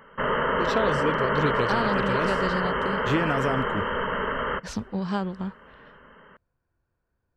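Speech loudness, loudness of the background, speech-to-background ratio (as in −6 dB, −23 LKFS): −29.5 LKFS, −26.0 LKFS, −3.5 dB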